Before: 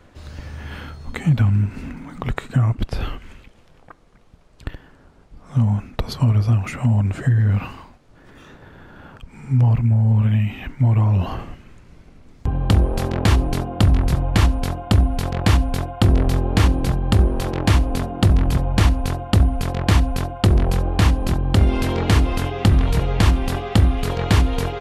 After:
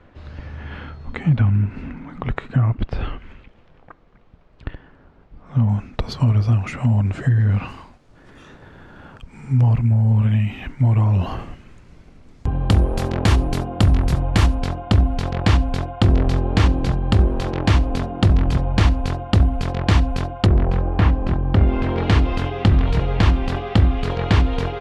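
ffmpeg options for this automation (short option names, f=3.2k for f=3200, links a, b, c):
-af "asetnsamples=n=441:p=0,asendcmd='5.69 lowpass f 6400;7.68 lowpass f 10000;14.55 lowpass f 5700;20.46 lowpass f 2200;21.97 lowpass f 4200',lowpass=3k"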